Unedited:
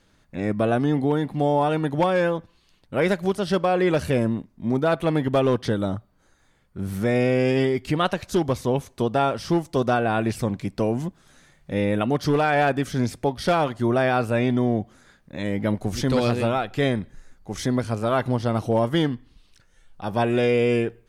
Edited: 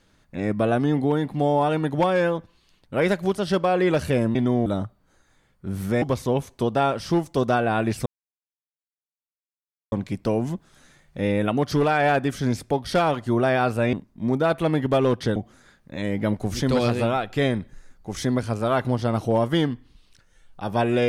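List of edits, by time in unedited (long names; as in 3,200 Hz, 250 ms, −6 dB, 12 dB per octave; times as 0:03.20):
0:04.35–0:05.78: swap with 0:14.46–0:14.77
0:07.14–0:08.41: remove
0:10.45: splice in silence 1.86 s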